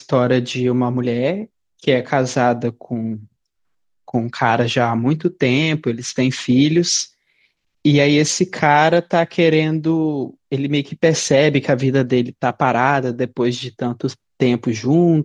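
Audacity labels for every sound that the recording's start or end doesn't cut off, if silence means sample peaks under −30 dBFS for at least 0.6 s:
4.080000	7.050000	sound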